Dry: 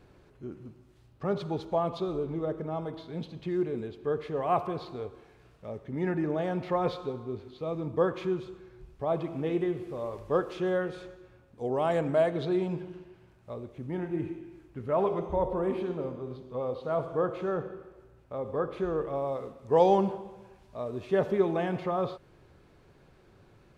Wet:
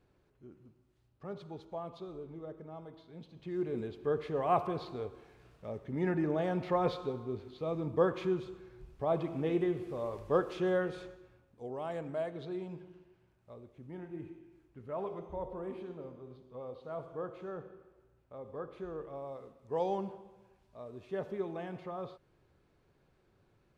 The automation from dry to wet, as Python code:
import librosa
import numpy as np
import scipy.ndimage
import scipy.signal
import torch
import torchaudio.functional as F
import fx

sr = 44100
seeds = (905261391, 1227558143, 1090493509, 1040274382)

y = fx.gain(x, sr, db=fx.line((3.26, -13.0), (3.78, -2.0), (11.02, -2.0), (11.74, -11.5)))